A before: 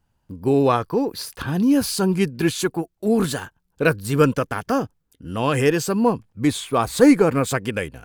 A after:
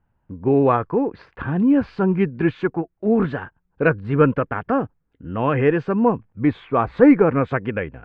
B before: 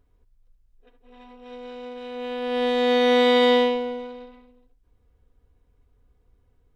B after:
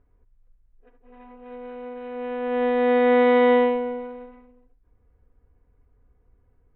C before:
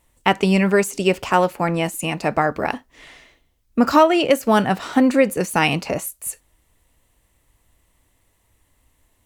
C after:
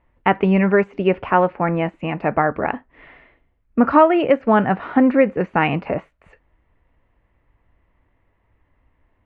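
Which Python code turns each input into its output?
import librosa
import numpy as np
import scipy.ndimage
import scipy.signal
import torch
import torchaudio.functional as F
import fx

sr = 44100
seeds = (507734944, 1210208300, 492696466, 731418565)

y = scipy.signal.sosfilt(scipy.signal.butter(4, 2200.0, 'lowpass', fs=sr, output='sos'), x)
y = y * librosa.db_to_amplitude(1.0)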